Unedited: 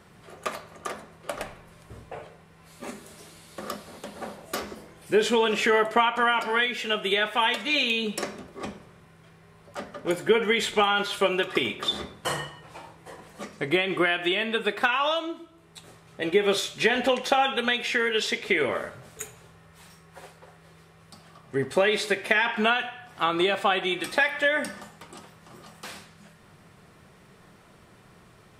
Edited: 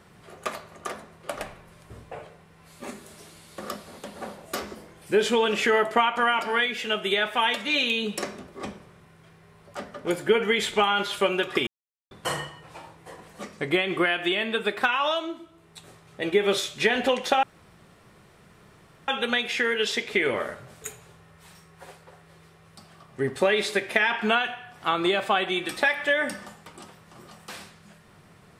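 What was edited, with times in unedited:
0:11.67–0:12.11: silence
0:17.43: splice in room tone 1.65 s

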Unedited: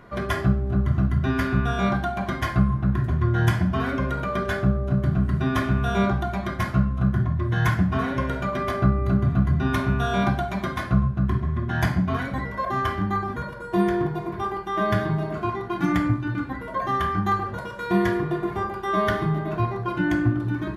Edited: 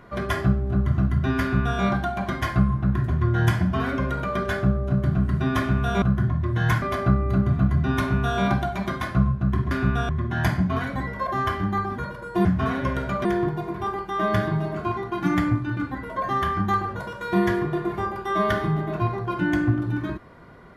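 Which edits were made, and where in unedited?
0:01.41–0:01.79: duplicate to 0:11.47
0:06.02–0:06.98: remove
0:07.78–0:08.58: move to 0:13.83

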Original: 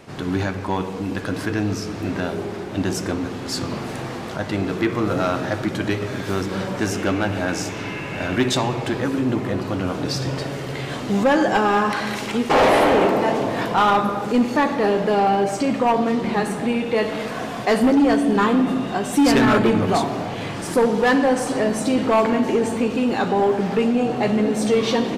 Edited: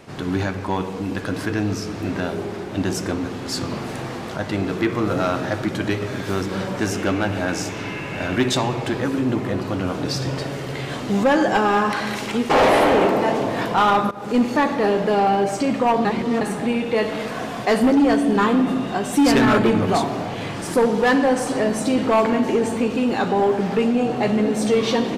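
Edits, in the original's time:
0:14.11–0:14.37: fade in, from −18 dB
0:16.05–0:16.41: reverse

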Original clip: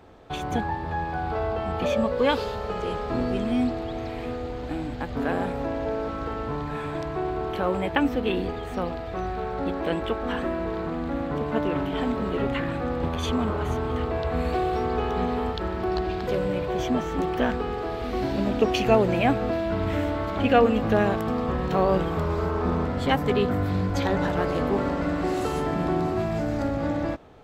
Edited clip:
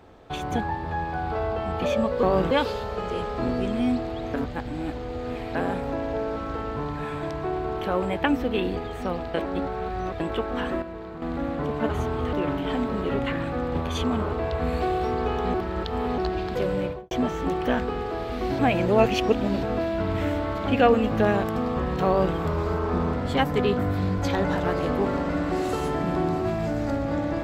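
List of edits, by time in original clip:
0:04.06–0:05.27: reverse
0:09.06–0:09.92: reverse
0:10.54–0:10.94: clip gain −8 dB
0:13.60–0:14.04: move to 0:11.61
0:15.26–0:15.90: reverse
0:16.53–0:16.83: fade out and dull
0:18.31–0:19.35: reverse
0:21.79–0:22.07: duplicate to 0:02.23

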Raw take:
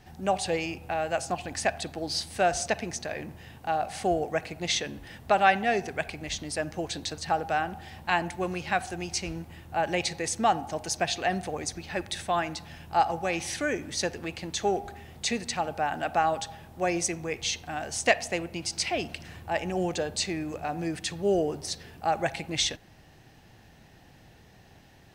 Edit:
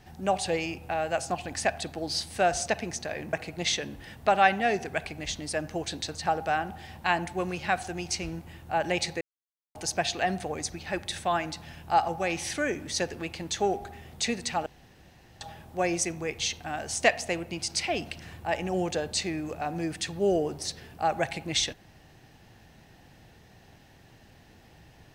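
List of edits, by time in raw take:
0:03.33–0:04.36: remove
0:10.24–0:10.78: silence
0:15.69–0:16.44: fill with room tone

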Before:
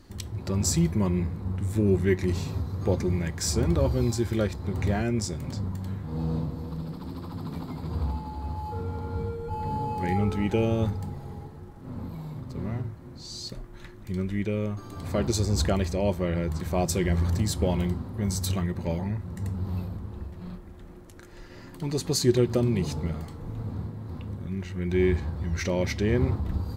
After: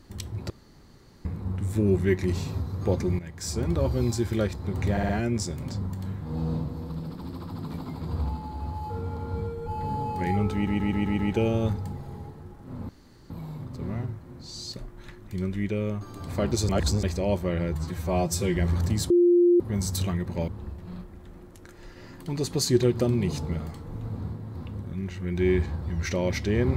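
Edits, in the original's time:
0:00.50–0:01.25: fill with room tone
0:03.19–0:04.24: fade in equal-power, from −12.5 dB
0:04.91: stutter 0.06 s, 4 plays
0:10.36: stutter 0.13 s, 6 plays
0:12.06: splice in room tone 0.41 s
0:15.45–0:15.79: reverse
0:16.51–0:17.05: time-stretch 1.5×
0:17.59–0:18.09: beep over 350 Hz −15 dBFS
0:18.97–0:20.02: remove

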